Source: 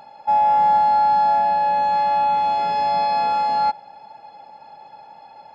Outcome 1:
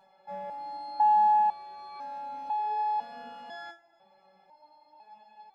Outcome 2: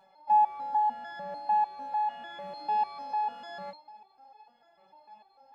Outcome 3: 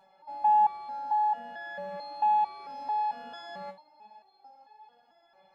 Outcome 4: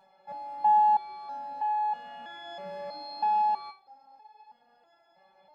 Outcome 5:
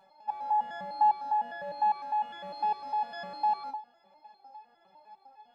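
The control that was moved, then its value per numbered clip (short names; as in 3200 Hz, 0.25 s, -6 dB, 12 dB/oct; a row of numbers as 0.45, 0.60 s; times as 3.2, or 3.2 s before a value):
stepped resonator, rate: 2, 6.7, 4.5, 3.1, 9.9 Hz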